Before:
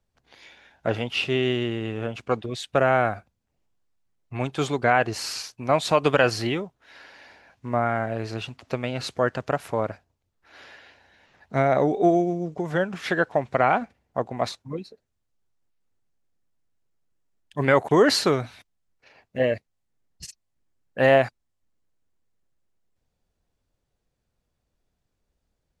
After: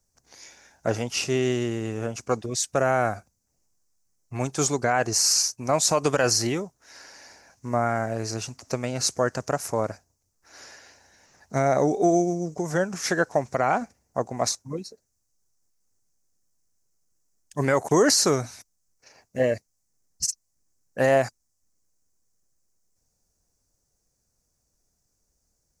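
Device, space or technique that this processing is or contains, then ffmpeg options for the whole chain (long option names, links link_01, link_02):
over-bright horn tweeter: -af "highshelf=frequency=4500:width_type=q:width=3:gain=10.5,alimiter=limit=-10dB:level=0:latency=1:release=64"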